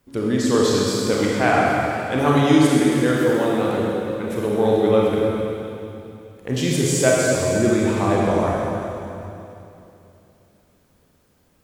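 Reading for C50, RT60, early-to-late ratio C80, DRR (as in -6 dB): -3.0 dB, 2.9 s, -1.5 dB, -4.5 dB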